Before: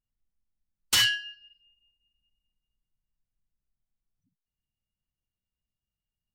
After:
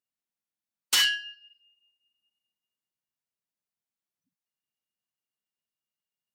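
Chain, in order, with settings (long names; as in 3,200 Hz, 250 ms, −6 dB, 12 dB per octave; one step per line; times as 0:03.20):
high-pass filter 210 Hz 12 dB per octave
low-shelf EQ 280 Hz −7.5 dB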